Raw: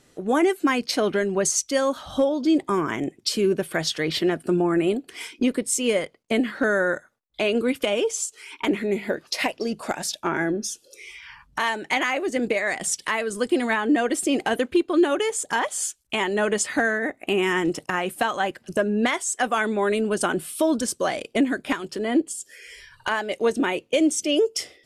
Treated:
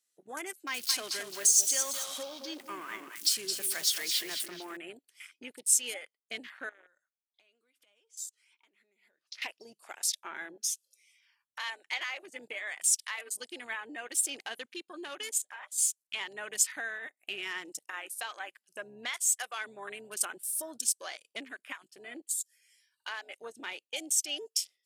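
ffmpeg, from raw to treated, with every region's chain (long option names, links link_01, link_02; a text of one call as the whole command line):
ffmpeg -i in.wav -filter_complex "[0:a]asettb=1/sr,asplit=3[link_01][link_02][link_03];[link_01]atrim=end=0.674[link_04];[link_02]atrim=start=0.67:end=4.77,asetpts=PTS-STARTPTS,afade=type=in:duration=0.004:curve=qsin,afade=type=out:start_time=4.096:duration=0.004:curve=qsin,aeval=exprs='val(0)+0.5*0.0335*sgn(val(0))':channel_layout=same,aecho=1:1:218|436|654|872:0.447|0.152|0.0516|0.0176,atrim=end_sample=180810[link_05];[link_03]atrim=start=4.766[link_06];[link_04][link_05]acrossfade=duration=0.004:curve1=hsin:curve2=qsin[link_07];[link_07][link_06]acrossfade=duration=0.004:curve1=qsin:curve2=hsin,asettb=1/sr,asplit=3[link_08][link_09][link_10];[link_08]atrim=end=6.694[link_11];[link_09]atrim=start=6.69:end=9.42,asetpts=PTS-STARTPTS,afade=type=in:duration=0.004:curve=qsin,afade=type=out:start_time=2.726:duration=0.004:curve=qsin,aemphasis=mode=reproduction:type=50fm,acompressor=threshold=-33dB:ratio=10:attack=3.2:release=140:knee=1:detection=peak[link_12];[link_10]atrim=start=9.416[link_13];[link_11][link_12]acrossfade=duration=0.004:curve1=hsin:curve2=qsin[link_14];[link_14][link_13]acrossfade=duration=0.004:curve1=qsin:curve2=hsin,asettb=1/sr,asplit=3[link_15][link_16][link_17];[link_15]atrim=end=15.384[link_18];[link_16]atrim=start=15.38:end=15.78,asetpts=PTS-STARTPTS,afade=type=in:duration=0.004:curve=qsin,afade=type=out:start_time=0.396:duration=0.004:curve=qsin,bass=frequency=250:gain=3,treble=frequency=4000:gain=-9,acompressor=threshold=-25dB:ratio=6:attack=3.2:release=140:knee=1:detection=peak,asplit=2[link_19][link_20];[link_20]adelay=15,volume=-10dB[link_21];[link_19][link_21]amix=inputs=2:normalize=0,atrim=end_sample=17640[link_22];[link_17]atrim=start=15.776[link_23];[link_18][link_22]acrossfade=duration=0.004:curve1=hsin:curve2=qsin[link_24];[link_24][link_23]acrossfade=duration=0.004:curve1=qsin:curve2=hsin,aderivative,afwtdn=0.00562" out.wav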